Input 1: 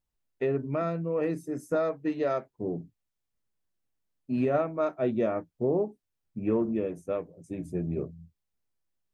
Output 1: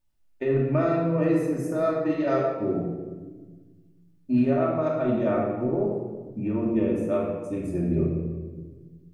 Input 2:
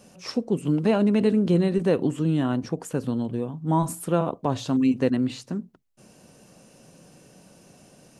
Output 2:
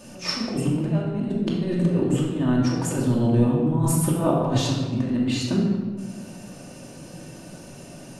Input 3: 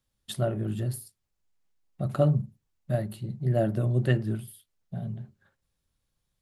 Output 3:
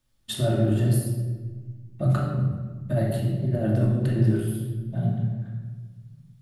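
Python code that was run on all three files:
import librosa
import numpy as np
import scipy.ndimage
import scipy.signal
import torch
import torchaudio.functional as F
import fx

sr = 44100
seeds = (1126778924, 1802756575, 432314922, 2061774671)

y = fx.over_compress(x, sr, threshold_db=-27.0, ratio=-0.5)
y = fx.room_shoebox(y, sr, seeds[0], volume_m3=1100.0, walls='mixed', distance_m=2.6)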